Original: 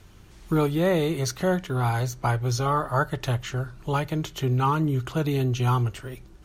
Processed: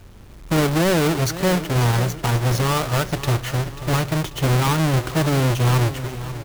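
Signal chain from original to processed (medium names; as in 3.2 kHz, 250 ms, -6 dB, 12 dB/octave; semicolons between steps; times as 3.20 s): square wave that keeps the level; peak limiter -16 dBFS, peak gain reduction 5.5 dB; feedback delay 539 ms, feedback 49%, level -13.5 dB; trim +1.5 dB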